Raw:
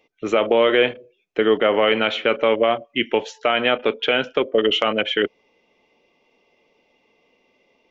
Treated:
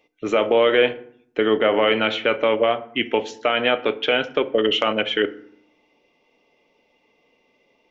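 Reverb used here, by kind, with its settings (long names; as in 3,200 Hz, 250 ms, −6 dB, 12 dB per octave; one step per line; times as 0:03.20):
feedback delay network reverb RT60 0.62 s, low-frequency decay 1.45×, high-frequency decay 0.6×, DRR 11.5 dB
level −1 dB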